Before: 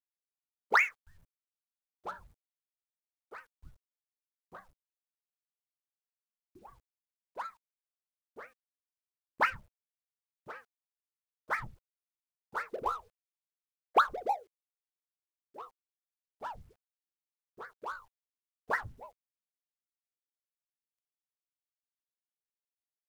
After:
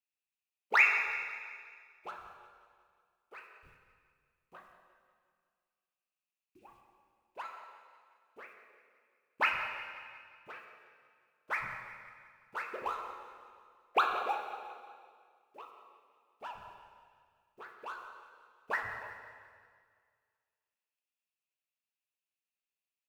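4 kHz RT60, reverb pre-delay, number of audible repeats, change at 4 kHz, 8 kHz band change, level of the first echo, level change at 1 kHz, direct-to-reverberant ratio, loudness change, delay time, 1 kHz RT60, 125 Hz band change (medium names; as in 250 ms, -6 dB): 1.9 s, 6 ms, 4, +2.5 dB, no reading, -14.5 dB, -2.0 dB, 2.5 dB, 0.0 dB, 180 ms, 1.9 s, -7.5 dB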